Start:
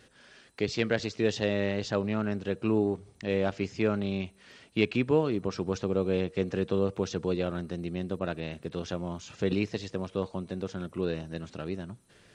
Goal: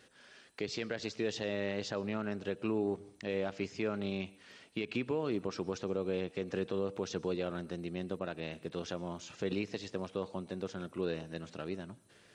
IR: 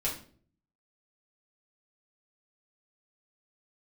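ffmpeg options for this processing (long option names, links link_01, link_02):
-filter_complex "[0:a]lowshelf=frequency=130:gain=-11,alimiter=limit=-21.5dB:level=0:latency=1:release=132,asplit=2[link_01][link_02];[1:a]atrim=start_sample=2205,adelay=110[link_03];[link_02][link_03]afir=irnorm=-1:irlink=0,volume=-27.5dB[link_04];[link_01][link_04]amix=inputs=2:normalize=0,volume=-2.5dB"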